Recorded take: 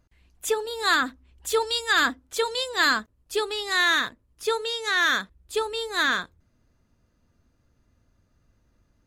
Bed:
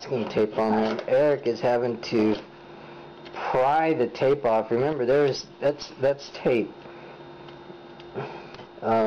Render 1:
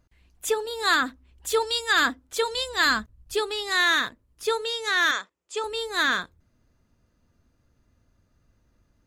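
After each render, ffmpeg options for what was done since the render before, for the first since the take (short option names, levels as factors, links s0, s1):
-filter_complex "[0:a]asplit=3[s0][s1][s2];[s0]afade=t=out:st=2.53:d=0.02[s3];[s1]asubboost=boost=5.5:cutoff=160,afade=t=in:st=2.53:d=0.02,afade=t=out:st=3.33:d=0.02[s4];[s2]afade=t=in:st=3.33:d=0.02[s5];[s3][s4][s5]amix=inputs=3:normalize=0,asettb=1/sr,asplit=3[s6][s7][s8];[s6]atrim=end=5.114[s9];[s7]atrim=start=5.11:end=5.64,asetpts=PTS-STARTPTS,afade=t=in:d=0.004:c=qsin,afade=t=out:st=0.526:d=0.004:c=qsin,highpass=500,equalizer=f=720:t=q:w=4:g=-3,equalizer=f=1600:t=q:w=4:g=-5,equalizer=f=4000:t=q:w=4:g=-7,equalizer=f=7200:t=q:w=4:g=4,lowpass=f=7700:w=0.5412,lowpass=f=7700:w=1.3066[s10];[s8]atrim=start=5.636[s11];[s9][s10]acrossfade=d=0.004:c1=hsin:c2=qsin[s12];[s12][s11]acrossfade=d=0.004:c1=qsin:c2=hsin"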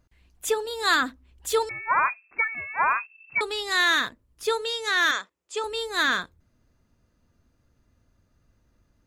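-filter_complex "[0:a]asettb=1/sr,asplit=3[s0][s1][s2];[s0]atrim=end=1.694[s3];[s1]atrim=start=1.69:end=3.41,asetpts=PTS-STARTPTS,afade=t=in:d=0.004:c=qsin,afade=t=out:st=1.716:d=0.004:c=qsin,lowpass=f=2300:t=q:w=0.5098,lowpass=f=2300:t=q:w=0.6013,lowpass=f=2300:t=q:w=0.9,lowpass=f=2300:t=q:w=2.563,afreqshift=-2700[s4];[s2]atrim=start=3.406[s5];[s3][s4]acrossfade=d=0.004:c1=hsin:c2=qsin[s6];[s6][s5]acrossfade=d=0.004:c1=qsin:c2=hsin"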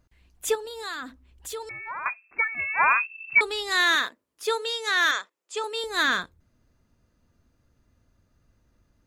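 -filter_complex "[0:a]asettb=1/sr,asplit=3[s0][s1][s2];[s0]atrim=end=0.554[s3];[s1]atrim=start=0.55:end=2.06,asetpts=PTS-STARTPTS,afade=t=in:d=0.004:c=qsin,afade=t=out:st=1.506:d=0.004:c=qsin,acompressor=threshold=0.0178:ratio=3:attack=3.2:release=140:knee=1:detection=peak[s4];[s2]atrim=start=2.056[s5];[s3][s4]acrossfade=d=0.004:c1=hsin:c2=qsin[s6];[s6][s5]acrossfade=d=0.004:c1=qsin:c2=hsin,asettb=1/sr,asplit=3[s7][s8][s9];[s7]atrim=end=2.594[s10];[s8]atrim=start=2.59:end=3.41,asetpts=PTS-STARTPTS,afade=t=in:d=0.004:c=qsin,afade=t=out:st=0.816:d=0.004:c=qsin,equalizer=f=2900:t=o:w=0.91:g=12[s11];[s9]atrim=start=3.406[s12];[s10][s11]acrossfade=d=0.004:c1=hsin:c2=qsin[s13];[s13][s12]acrossfade=d=0.004:c1=qsin:c2=hsin,asettb=1/sr,asplit=3[s14][s15][s16];[s14]atrim=end=3.954[s17];[s15]atrim=start=3.95:end=5.84,asetpts=PTS-STARTPTS,afade=t=in:d=0.004:c=qsin,afade=t=out:st=1.886:d=0.004:c=qsin,highpass=340[s18];[s16]atrim=start=5.836[s19];[s17][s18]acrossfade=d=0.004:c1=hsin:c2=qsin[s20];[s20][s19]acrossfade=d=0.004:c1=qsin:c2=hsin"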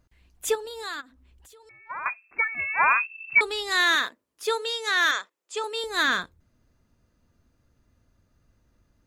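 -filter_complex "[0:a]asplit=3[s0][s1][s2];[s0]afade=t=out:st=1:d=0.02[s3];[s1]acompressor=threshold=0.00224:ratio=4:attack=3.2:release=140:knee=1:detection=peak,afade=t=in:st=1:d=0.02,afade=t=out:st=1.89:d=0.02[s4];[s2]afade=t=in:st=1.89:d=0.02[s5];[s3][s4][s5]amix=inputs=3:normalize=0"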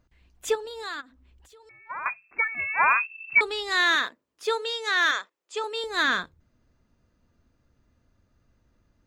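-af "equalizer=f=12000:t=o:w=1:g=-11,bandreject=f=50:t=h:w=6,bandreject=f=100:t=h:w=6,bandreject=f=150:t=h:w=6"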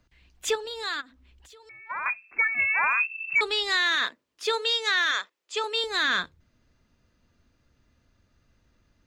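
-filter_complex "[0:a]acrossover=split=120|1800|6300[s0][s1][s2][s3];[s2]acontrast=87[s4];[s0][s1][s4][s3]amix=inputs=4:normalize=0,alimiter=limit=0.168:level=0:latency=1:release=17"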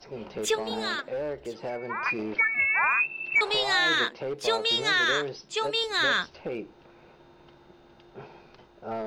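-filter_complex "[1:a]volume=0.266[s0];[0:a][s0]amix=inputs=2:normalize=0"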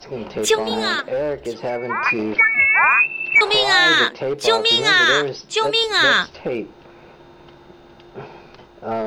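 -af "volume=2.99"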